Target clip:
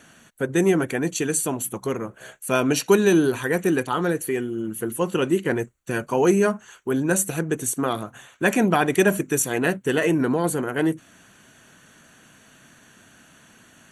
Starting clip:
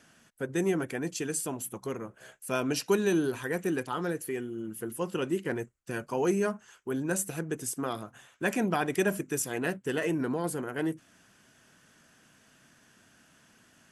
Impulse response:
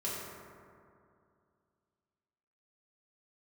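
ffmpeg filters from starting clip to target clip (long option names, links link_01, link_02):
-af "asuperstop=centerf=5100:order=20:qfactor=6.5,volume=9dB"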